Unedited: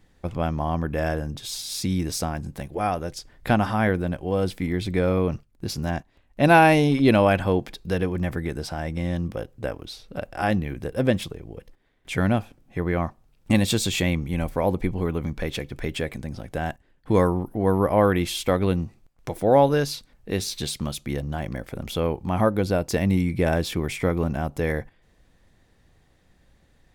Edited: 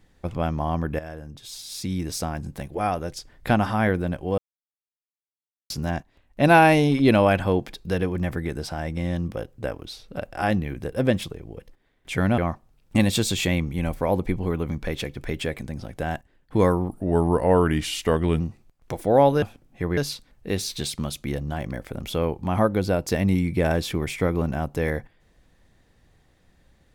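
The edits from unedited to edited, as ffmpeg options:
-filter_complex "[0:a]asplit=9[a][b][c][d][e][f][g][h][i];[a]atrim=end=0.99,asetpts=PTS-STARTPTS,afade=t=out:st=0.986:d=0.004:c=hsin:silence=0.199526[j];[b]atrim=start=0.99:end=4.38,asetpts=PTS-STARTPTS,afade=t=in:d=1.51:silence=0.199526,afade=t=out:st=3.386:d=0.004:c=hsin[k];[c]atrim=start=4.38:end=5.7,asetpts=PTS-STARTPTS,volume=0[l];[d]atrim=start=5.7:end=12.382,asetpts=PTS-STARTPTS,afade=t=in:d=0.004:c=hsin[m];[e]atrim=start=12.928:end=17.444[n];[f]atrim=start=17.44:end=18.77,asetpts=PTS-STARTPTS,asetrate=38808,aresample=44100,atrim=end_sample=66651,asetpts=PTS-STARTPTS[o];[g]atrim=start=18.766:end=19.792[p];[h]atrim=start=12.378:end=12.932[q];[i]atrim=start=19.788[r];[j][k][l][m]concat=n=4:v=0:a=1[s];[s][n]acrossfade=d=0.004:c1=hsin:c2=hsin[t];[t][o]acrossfade=d=0.004:c1=hsin:c2=hsin[u];[u][p]acrossfade=d=0.004:c1=hsin:c2=hsin[v];[v][q]acrossfade=d=0.004:c1=hsin:c2=hsin[w];[w][r]acrossfade=d=0.004:c1=hsin:c2=hsin"

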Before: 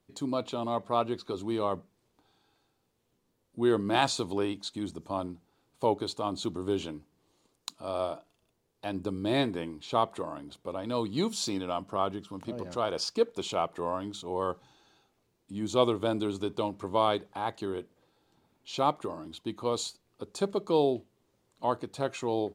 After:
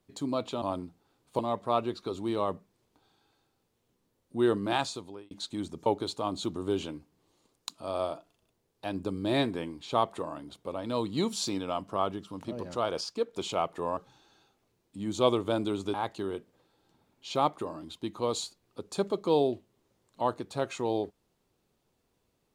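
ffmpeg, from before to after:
-filter_complex "[0:a]asplit=9[a][b][c][d][e][f][g][h][i];[a]atrim=end=0.622[j];[b]atrim=start=5.088:end=5.862[k];[c]atrim=start=0.618:end=4.54,asetpts=PTS-STARTPTS,afade=t=out:st=3.112:d=0.81[l];[d]atrim=start=4.54:end=5.092,asetpts=PTS-STARTPTS,afade=t=in:d=0.004:c=hsin[m];[e]atrim=start=5.858:end=13.012[n];[f]atrim=start=13.008:end=13.332,asetpts=PTS-STARTPTS,volume=-4.5dB[o];[g]atrim=start=13.328:end=13.972[p];[h]atrim=start=14.518:end=16.492[q];[i]atrim=start=17.368[r];[j][k]acrossfade=d=0.004:c1=hsin:c2=hsin[s];[l][m]concat=n=2:v=0:a=1[t];[s][t]acrossfade=d=0.004:c1=hsin:c2=hsin[u];[u][n]acrossfade=d=0.004:c1=hsin:c2=hsin[v];[v][o]acrossfade=d=0.004:c1=hsin:c2=hsin[w];[w][p]acrossfade=d=0.004:c1=hsin:c2=hsin[x];[x][q]acrossfade=d=0.004:c1=hsin:c2=hsin[y];[y][r]acrossfade=d=0.004:c1=hsin:c2=hsin"

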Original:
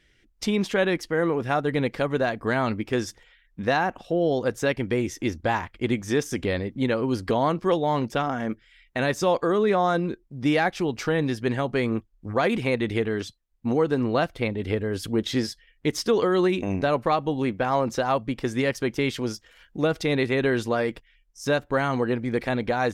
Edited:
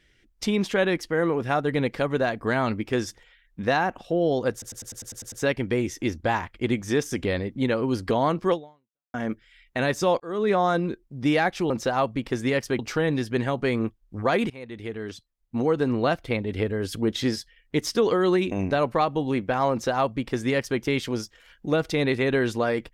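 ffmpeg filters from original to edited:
-filter_complex "[0:a]asplit=14[a][b][c][d][e][f][g][h][i][j][k][l][m][n];[a]atrim=end=4.622[o];[b]atrim=start=4.518:end=4.622[p];[c]atrim=start=4.518:end=4.622[q];[d]atrim=start=4.518:end=4.622[r];[e]atrim=start=4.518:end=4.622[s];[f]atrim=start=4.518:end=4.622[t];[g]atrim=start=4.518:end=4.622[u];[h]atrim=start=4.518:end=4.622[v];[i]atrim=start=4.518:end=8.34,asetpts=PTS-STARTPTS,afade=t=out:st=3.202:d=0.62:c=exp[w];[j]atrim=start=8.34:end=9.4,asetpts=PTS-STARTPTS,afade=t=in:d=0.004:c=hsin,afade=t=out:st=1.056:d=0.004:c=hsin[x];[k]atrim=start=9.4:end=10.902,asetpts=PTS-STARTPTS,afade=t=in:d=0.31[y];[l]atrim=start=17.818:end=18.912[z];[m]atrim=start=10.898:end=12.61,asetpts=PTS-STARTPTS,afade=t=out:st=1.708:d=0.004:c=hsin:silence=0.0891251[aa];[n]atrim=start=12.61,asetpts=PTS-STARTPTS,afade=t=in:d=1.29:silence=0.0891251[ab];[o][p]acrossfade=d=0.004:c1=hsin:c2=hsin[ac];[ac][q]acrossfade=d=0.004:c1=hsin:c2=hsin[ad];[ad][r]acrossfade=d=0.004:c1=hsin:c2=hsin[ae];[ae][s]acrossfade=d=0.004:c1=hsin:c2=hsin[af];[af][t]acrossfade=d=0.004:c1=hsin:c2=hsin[ag];[ag][u]acrossfade=d=0.004:c1=hsin:c2=hsin[ah];[ah][v]acrossfade=d=0.004:c1=hsin:c2=hsin[ai];[w][x][y]concat=n=3:v=0:a=1[aj];[ai][aj]acrossfade=d=0.004:c1=hsin:c2=hsin[ak];[ak][z]acrossfade=d=0.004:c1=hsin:c2=hsin[al];[aa][ab]concat=n=2:v=0:a=1[am];[al][am]acrossfade=d=0.004:c1=hsin:c2=hsin"

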